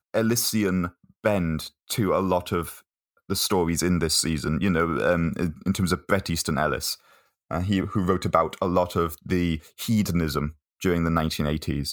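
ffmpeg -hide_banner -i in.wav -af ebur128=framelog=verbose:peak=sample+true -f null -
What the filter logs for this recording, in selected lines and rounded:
Integrated loudness:
  I:         -24.9 LUFS
  Threshold: -35.2 LUFS
Loudness range:
  LRA:         2.1 LU
  Threshold: -45.1 LUFS
  LRA low:   -26.1 LUFS
  LRA high:  -24.0 LUFS
Sample peak:
  Peak:       -4.8 dBFS
True peak:
  Peak:       -4.8 dBFS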